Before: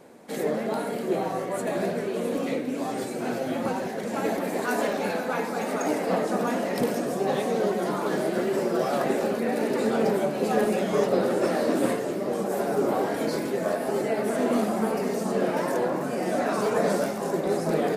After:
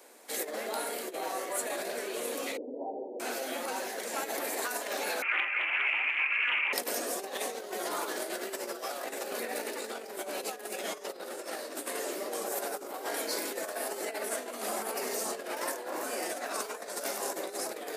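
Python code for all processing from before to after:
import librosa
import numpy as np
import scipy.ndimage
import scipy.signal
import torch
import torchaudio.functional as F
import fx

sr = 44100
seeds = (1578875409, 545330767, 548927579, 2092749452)

y = fx.chain(x, sr, fx.envelope_sharpen(power=1.5),
    fx.brickwall_lowpass(high_hz=1000.0), at=(2.57, 3.2))
y = fx.chain(y, sr, fx.tilt_eq(slope=3.0),
    fx.freq_invert(carrier_hz=2900),
    fx.doppler_dist(depth_ms=0.29), at=(5.22, 6.73))
y = scipy.signal.sosfilt(scipy.signal.butter(4, 270.0, 'highpass', fs=sr, output='sos'), y)
y = fx.over_compress(y, sr, threshold_db=-28.0, ratio=-0.5)
y = fx.tilt_eq(y, sr, slope=3.5)
y = y * librosa.db_to_amplitude(-5.5)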